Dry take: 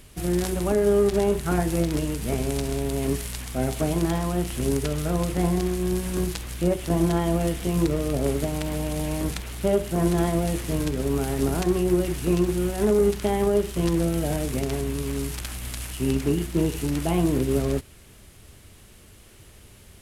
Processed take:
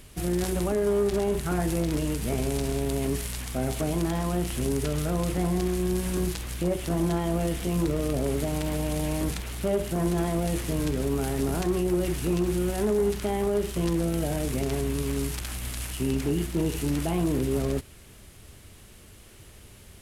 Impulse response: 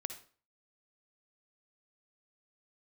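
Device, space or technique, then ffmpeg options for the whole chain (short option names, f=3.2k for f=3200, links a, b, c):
clipper into limiter: -af "asoftclip=type=hard:threshold=-14.5dB,alimiter=limit=-18.5dB:level=0:latency=1:release=14"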